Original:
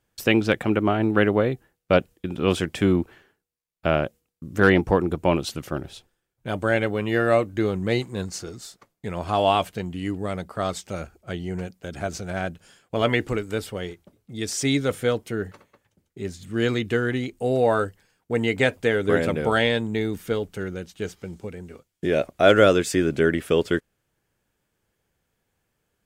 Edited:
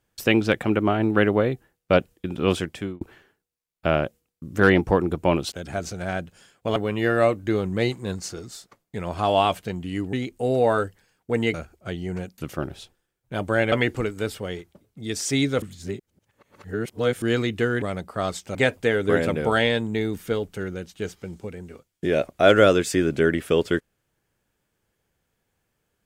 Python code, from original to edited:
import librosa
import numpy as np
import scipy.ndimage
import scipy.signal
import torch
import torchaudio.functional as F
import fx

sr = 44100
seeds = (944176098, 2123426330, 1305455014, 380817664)

y = fx.edit(x, sr, fx.fade_out_span(start_s=2.5, length_s=0.51),
    fx.swap(start_s=5.52, length_s=1.34, other_s=11.8, other_length_s=1.24),
    fx.swap(start_s=10.23, length_s=0.73, other_s=17.14, other_length_s=1.41),
    fx.reverse_span(start_s=14.94, length_s=1.6), tone=tone)